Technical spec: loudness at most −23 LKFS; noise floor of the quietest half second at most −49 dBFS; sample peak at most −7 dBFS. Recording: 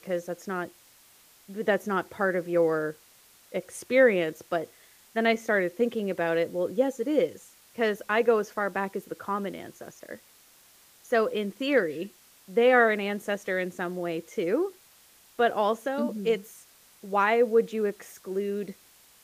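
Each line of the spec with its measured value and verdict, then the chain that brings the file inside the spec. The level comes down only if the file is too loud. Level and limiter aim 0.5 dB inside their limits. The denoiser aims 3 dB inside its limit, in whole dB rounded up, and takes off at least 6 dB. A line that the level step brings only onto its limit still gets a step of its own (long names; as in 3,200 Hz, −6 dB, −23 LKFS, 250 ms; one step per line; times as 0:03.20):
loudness −27.0 LKFS: in spec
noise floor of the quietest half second −57 dBFS: in spec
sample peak −8.5 dBFS: in spec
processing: no processing needed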